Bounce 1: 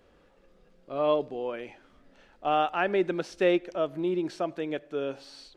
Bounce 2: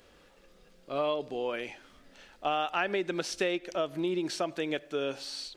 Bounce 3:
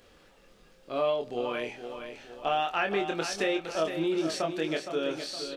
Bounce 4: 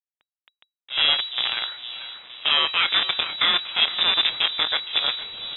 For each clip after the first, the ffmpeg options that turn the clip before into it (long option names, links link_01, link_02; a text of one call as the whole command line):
ffmpeg -i in.wav -af "acompressor=threshold=-27dB:ratio=12,highshelf=frequency=2200:gain=12" out.wav
ffmpeg -i in.wav -filter_complex "[0:a]asplit=2[link_01][link_02];[link_02]adelay=25,volume=-4.5dB[link_03];[link_01][link_03]amix=inputs=2:normalize=0,asplit=2[link_04][link_05];[link_05]aecho=0:1:465|930|1395|1860|2325:0.355|0.163|0.0751|0.0345|0.0159[link_06];[link_04][link_06]amix=inputs=2:normalize=0" out.wav
ffmpeg -i in.wav -af "acrusher=bits=5:dc=4:mix=0:aa=0.000001,lowpass=frequency=3300:width_type=q:width=0.5098,lowpass=frequency=3300:width_type=q:width=0.6013,lowpass=frequency=3300:width_type=q:width=0.9,lowpass=frequency=3300:width_type=q:width=2.563,afreqshift=-3900,volume=7.5dB" out.wav